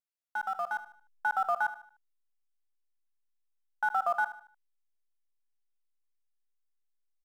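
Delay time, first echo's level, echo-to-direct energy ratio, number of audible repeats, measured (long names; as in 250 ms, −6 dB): 75 ms, −14.0 dB, −13.5 dB, 3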